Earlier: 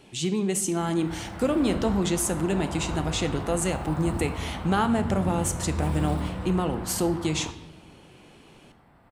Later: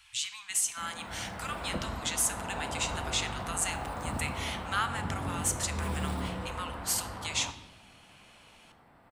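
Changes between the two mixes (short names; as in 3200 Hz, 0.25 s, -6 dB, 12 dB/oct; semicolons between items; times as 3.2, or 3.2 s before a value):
speech: add inverse Chebyshev band-stop 170–570 Hz, stop band 50 dB; master: add low shelf 220 Hz -7 dB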